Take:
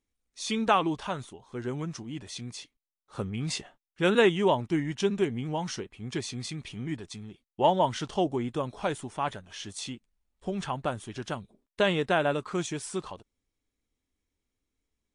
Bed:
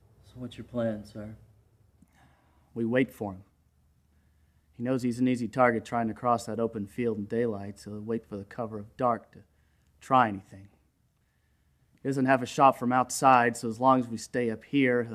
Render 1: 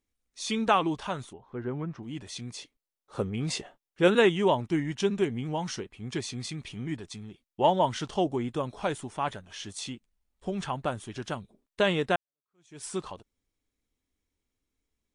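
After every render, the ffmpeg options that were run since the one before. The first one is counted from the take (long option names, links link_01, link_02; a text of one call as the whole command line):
ffmpeg -i in.wav -filter_complex "[0:a]asettb=1/sr,asplit=3[link_01][link_02][link_03];[link_01]atrim=end=1.334[link_04];[link_02]atrim=start=1.33:end=2.03,asetpts=PTS-STARTPTS,afade=type=in:duration=0.004:curve=qsin,afade=type=out:start_time=0.696:duration=0.004:curve=qsin,lowpass=1800[link_05];[link_03]atrim=start=2.026[link_06];[link_04][link_05]acrossfade=duration=0.004:curve1=hsin:curve2=qsin[link_07];[link_07][link_06]acrossfade=duration=0.004:curve1=qsin:curve2=hsin,asettb=1/sr,asplit=3[link_08][link_09][link_10];[link_08]atrim=end=2.534[link_11];[link_09]atrim=start=2.53:end=4.08,asetpts=PTS-STARTPTS,afade=type=in:duration=0.004:curve=qsin,afade=type=out:start_time=1.546:duration=0.004:curve=qsin,equalizer=frequency=480:width_type=o:width=1.3:gain=6[link_12];[link_10]atrim=start=4.076[link_13];[link_11][link_12]acrossfade=duration=0.004:curve1=hsin:curve2=qsin[link_14];[link_14][link_13]acrossfade=duration=0.004:curve1=qsin:curve2=hsin,asplit=2[link_15][link_16];[link_15]atrim=end=12.16,asetpts=PTS-STARTPTS,afade=type=out:start_time=12.156:duration=0.004:curve=hsin[link_17];[link_16]atrim=start=12.16,asetpts=PTS-STARTPTS,afade=type=in:duration=0.68:curve=exp[link_18];[link_17][link_18]concat=n=2:v=0:a=1" out.wav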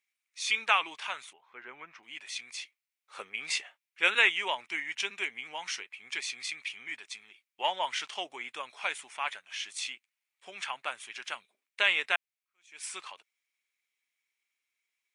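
ffmpeg -i in.wav -af "highpass=1200,equalizer=frequency=2300:width=2.4:gain=12" out.wav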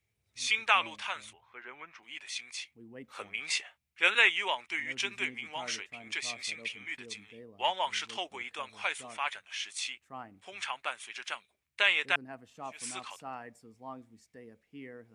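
ffmpeg -i in.wav -i bed.wav -filter_complex "[1:a]volume=-22.5dB[link_01];[0:a][link_01]amix=inputs=2:normalize=0" out.wav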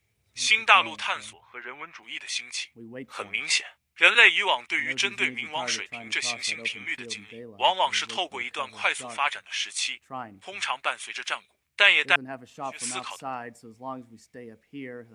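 ffmpeg -i in.wav -af "volume=8dB,alimiter=limit=-2dB:level=0:latency=1" out.wav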